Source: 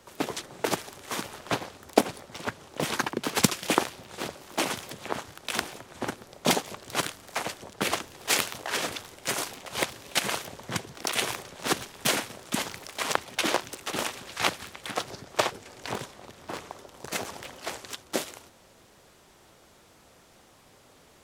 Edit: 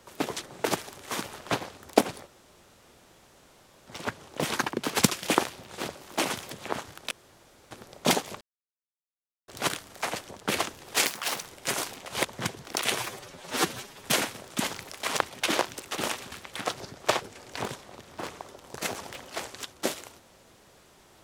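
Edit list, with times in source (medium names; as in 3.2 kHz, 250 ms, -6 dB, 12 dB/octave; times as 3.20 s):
2.27 s: insert room tone 1.60 s
5.51–6.11 s: room tone
6.81 s: insert silence 1.07 s
8.39–9.05 s: speed 170%
9.85–10.55 s: delete
11.29–11.99 s: stretch 1.5×
14.27–14.62 s: delete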